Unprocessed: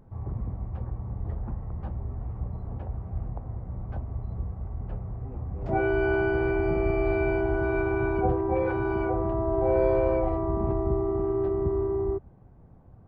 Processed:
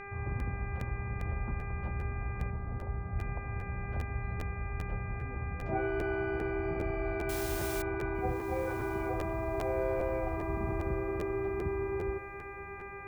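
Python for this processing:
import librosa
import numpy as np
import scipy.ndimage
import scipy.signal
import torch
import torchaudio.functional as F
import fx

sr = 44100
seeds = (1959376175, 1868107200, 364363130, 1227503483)

y = fx.rider(x, sr, range_db=3, speed_s=0.5)
y = fx.quant_dither(y, sr, seeds[0], bits=6, dither='triangular', at=(7.29, 7.82))
y = fx.dmg_buzz(y, sr, base_hz=400.0, harmonics=6, level_db=-39.0, tilt_db=-1, odd_only=False)
y = fx.lowpass(y, sr, hz=1100.0, slope=6, at=(2.5, 3.19))
y = fx.echo_diffused(y, sr, ms=1159, feedback_pct=44, wet_db=-15)
y = fx.buffer_crackle(y, sr, first_s=0.39, period_s=0.4, block=512, kind='repeat')
y = F.gain(torch.from_numpy(y), -6.0).numpy()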